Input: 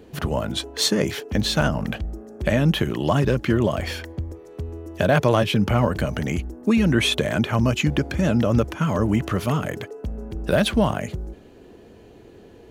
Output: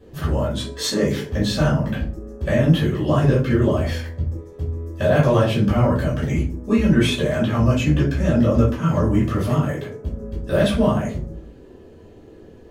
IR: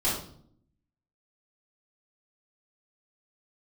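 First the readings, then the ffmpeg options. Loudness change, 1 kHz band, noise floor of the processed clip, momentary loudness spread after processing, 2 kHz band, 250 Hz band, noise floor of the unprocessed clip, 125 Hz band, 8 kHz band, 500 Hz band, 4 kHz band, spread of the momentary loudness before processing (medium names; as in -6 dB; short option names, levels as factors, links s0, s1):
+2.0 dB, -0.5 dB, -45 dBFS, 12 LU, -1.5 dB, +2.5 dB, -47 dBFS, +4.0 dB, -2.5 dB, +2.5 dB, -3.0 dB, 14 LU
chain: -filter_complex "[1:a]atrim=start_sample=2205,asetrate=70560,aresample=44100[s0];[0:a][s0]afir=irnorm=-1:irlink=0,volume=0.422"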